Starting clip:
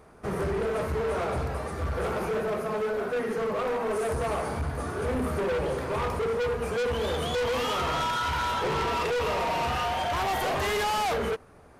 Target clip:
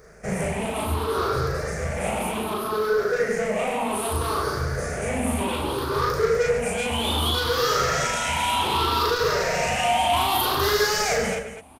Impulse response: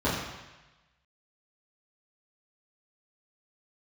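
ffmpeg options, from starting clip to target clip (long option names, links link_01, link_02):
-filter_complex "[0:a]afftfilt=real='re*pow(10,14/40*sin(2*PI*(0.56*log(max(b,1)*sr/1024/100)/log(2)-(0.64)*(pts-256)/sr)))':imag='im*pow(10,14/40*sin(2*PI*(0.56*log(max(b,1)*sr/1024/100)/log(2)-(0.64)*(pts-256)/sr)))':win_size=1024:overlap=0.75,highshelf=frequency=3300:gain=9.5,asplit=2[link_01][link_02];[link_02]aecho=0:1:37.9|139.9|250.7:0.891|0.355|0.316[link_03];[link_01][link_03]amix=inputs=2:normalize=0,volume=-1.5dB"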